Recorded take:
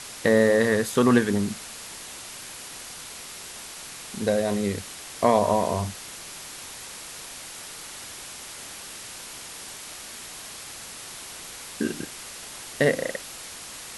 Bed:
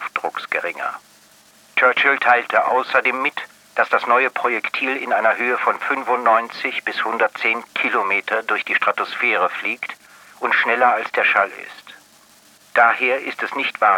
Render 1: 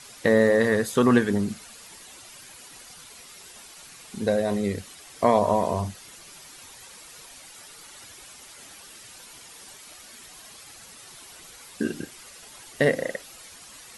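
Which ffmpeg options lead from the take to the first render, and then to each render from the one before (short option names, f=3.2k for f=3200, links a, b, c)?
-af "afftdn=nr=10:nf=-40"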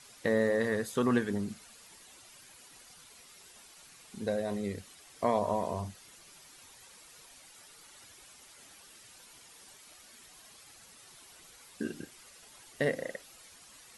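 -af "volume=-9dB"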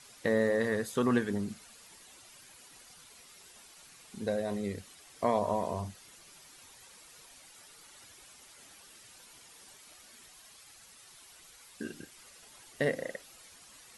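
-filter_complex "[0:a]asettb=1/sr,asplit=3[a][b][c];[a]atrim=end=10.304[d];[b]atrim=start=10.3:end=12.17,asetpts=PTS-STARTPTS,afade=t=in:d=0.004:c=qsin,afade=t=out:st=1.866:d=0.004:c=qsin,equalizer=f=260:w=0.36:g=-4.5[e];[c]atrim=start=12.166[f];[d][e]acrossfade=d=0.004:c1=hsin:c2=qsin[g];[g][f]acrossfade=d=0.004:c1=qsin:c2=hsin"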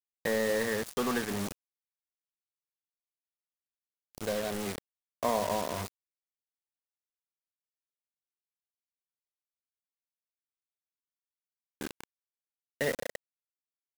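-filter_complex "[0:a]acrossover=split=430[a][b];[a]asoftclip=type=tanh:threshold=-32.5dB[c];[c][b]amix=inputs=2:normalize=0,acrusher=bits=5:mix=0:aa=0.000001"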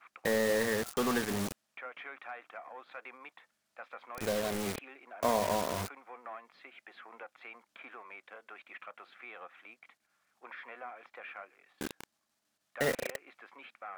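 -filter_complex "[1:a]volume=-30.5dB[a];[0:a][a]amix=inputs=2:normalize=0"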